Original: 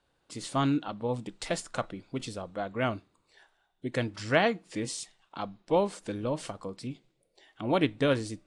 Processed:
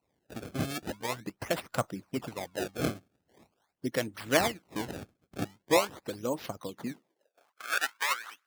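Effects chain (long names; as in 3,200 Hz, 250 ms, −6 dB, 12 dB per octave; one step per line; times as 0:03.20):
sample-and-hold swept by an LFO 26×, swing 160% 0.43 Hz
high-pass filter sweep 100 Hz → 1,400 Hz, 0:06.63–0:07.65
harmonic and percussive parts rebalanced harmonic −18 dB
level +1.5 dB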